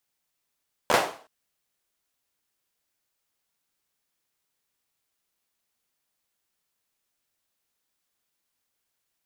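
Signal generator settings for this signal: hand clap length 0.37 s, apart 13 ms, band 660 Hz, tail 0.42 s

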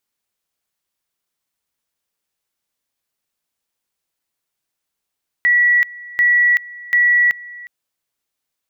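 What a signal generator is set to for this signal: two-level tone 1940 Hz -10 dBFS, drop 21.5 dB, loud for 0.38 s, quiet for 0.36 s, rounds 3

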